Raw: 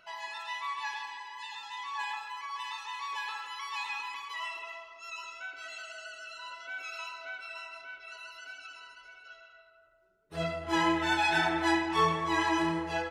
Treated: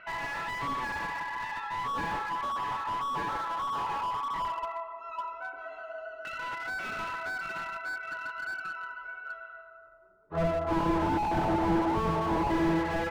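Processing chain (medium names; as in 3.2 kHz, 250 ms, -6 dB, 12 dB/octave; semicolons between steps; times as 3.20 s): LFO low-pass saw down 0.16 Hz 840–2000 Hz; tape echo 68 ms, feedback 85%, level -22 dB, low-pass 3.1 kHz; slew-rate limiter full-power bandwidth 16 Hz; trim +6 dB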